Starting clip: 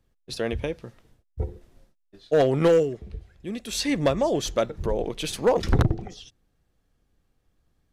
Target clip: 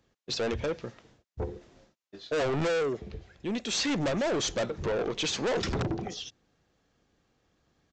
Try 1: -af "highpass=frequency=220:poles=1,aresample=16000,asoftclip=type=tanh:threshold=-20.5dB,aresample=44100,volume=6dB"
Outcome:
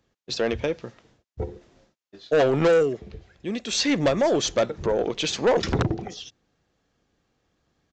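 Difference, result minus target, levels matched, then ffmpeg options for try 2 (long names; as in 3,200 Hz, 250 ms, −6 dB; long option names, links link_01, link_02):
soft clipping: distortion −8 dB
-af "highpass=frequency=220:poles=1,aresample=16000,asoftclip=type=tanh:threshold=-32dB,aresample=44100,volume=6dB"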